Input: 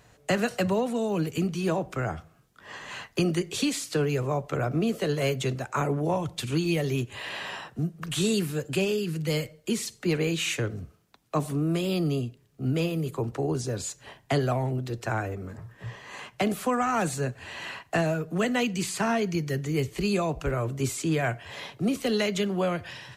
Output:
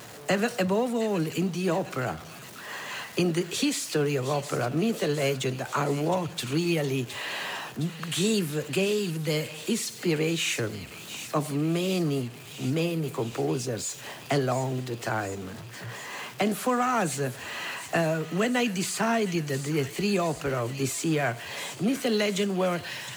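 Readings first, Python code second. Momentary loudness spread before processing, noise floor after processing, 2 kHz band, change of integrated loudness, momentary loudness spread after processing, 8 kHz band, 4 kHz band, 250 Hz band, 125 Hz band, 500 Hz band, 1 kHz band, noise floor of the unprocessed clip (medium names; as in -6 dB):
10 LU, -43 dBFS, +1.5 dB, +0.5 dB, 9 LU, +2.5 dB, +2.0 dB, 0.0 dB, -1.5 dB, +0.5 dB, +1.0 dB, -60 dBFS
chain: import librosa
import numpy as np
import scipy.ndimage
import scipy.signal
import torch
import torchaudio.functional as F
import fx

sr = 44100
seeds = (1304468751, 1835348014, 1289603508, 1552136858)

y = x + 0.5 * 10.0 ** (-38.5 / 20.0) * np.sign(x)
y = scipy.signal.sosfilt(scipy.signal.butter(2, 140.0, 'highpass', fs=sr, output='sos'), y)
y = fx.echo_wet_highpass(y, sr, ms=714, feedback_pct=69, hz=2200.0, wet_db=-10.0)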